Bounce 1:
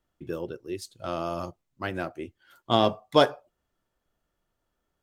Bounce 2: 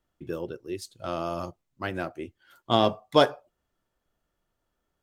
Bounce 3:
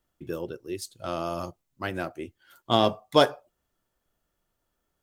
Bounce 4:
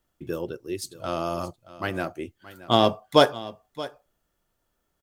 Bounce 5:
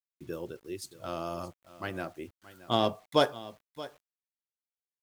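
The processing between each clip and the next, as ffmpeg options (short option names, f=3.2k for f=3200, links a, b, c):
-af anull
-af "highshelf=f=7k:g=7.5"
-af "aecho=1:1:625:0.141,volume=2.5dB"
-af "acrusher=bits=8:mix=0:aa=0.000001,volume=-7.5dB"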